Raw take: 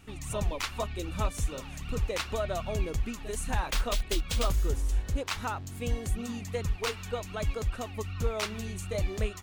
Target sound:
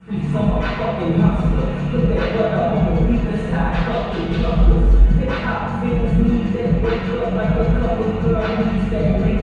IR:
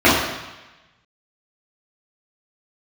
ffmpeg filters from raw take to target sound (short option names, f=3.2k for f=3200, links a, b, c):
-filter_complex "[0:a]highpass=f=180:p=1,bass=f=250:g=9,treble=f=4k:g=-3,aecho=1:1:6:0.73,acrossover=split=360|1500|5100[a][b][c][d];[d]acompressor=threshold=-57dB:ratio=12[e];[a][b][c][e]amix=inputs=4:normalize=0,alimiter=limit=-24dB:level=0:latency=1:release=183,asplit=5[f][g][h][i][j];[g]adelay=106,afreqshift=91,volume=-12dB[k];[h]adelay=212,afreqshift=182,volume=-20.6dB[l];[i]adelay=318,afreqshift=273,volume=-29.3dB[m];[j]adelay=424,afreqshift=364,volume=-37.9dB[n];[f][k][l][m][n]amix=inputs=5:normalize=0[o];[1:a]atrim=start_sample=2205,asetrate=29547,aresample=44100[p];[o][p]afir=irnorm=-1:irlink=0,aresample=22050,aresample=44100,asplit=2[q][r];[r]asetrate=33038,aresample=44100,atempo=1.33484,volume=-12dB[s];[q][s]amix=inputs=2:normalize=0,volume=-17.5dB"